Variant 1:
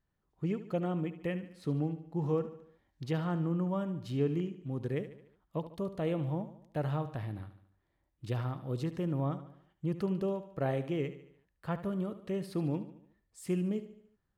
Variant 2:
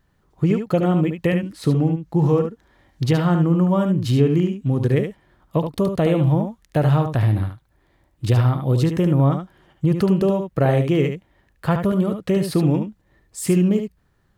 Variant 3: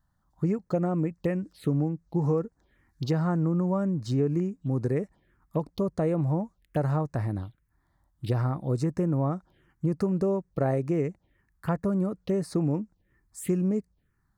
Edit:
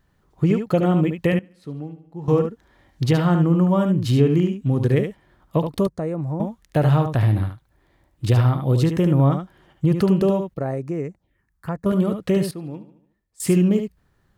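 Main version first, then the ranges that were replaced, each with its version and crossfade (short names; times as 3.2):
2
1.39–2.28 from 1
5.87–6.4 from 3
10.54–11.86 from 3
12.51–13.4 from 1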